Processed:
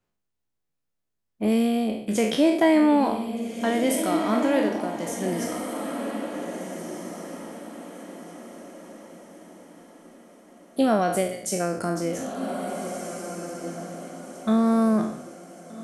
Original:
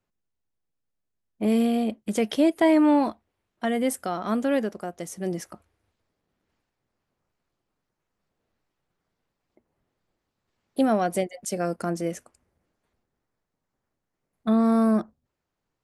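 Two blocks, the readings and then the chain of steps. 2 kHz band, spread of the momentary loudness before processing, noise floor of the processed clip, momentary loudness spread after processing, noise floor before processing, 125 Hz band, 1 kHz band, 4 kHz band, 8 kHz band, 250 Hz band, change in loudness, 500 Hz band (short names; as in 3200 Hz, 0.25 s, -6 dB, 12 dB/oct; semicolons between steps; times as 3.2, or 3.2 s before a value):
+3.5 dB, 14 LU, -79 dBFS, 20 LU, -83 dBFS, +2.0 dB, +2.5 dB, +4.5 dB, +5.5 dB, +1.0 dB, -0.5 dB, +2.0 dB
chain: spectral trails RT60 0.65 s; diffused feedback echo 1.654 s, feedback 40%, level -7 dB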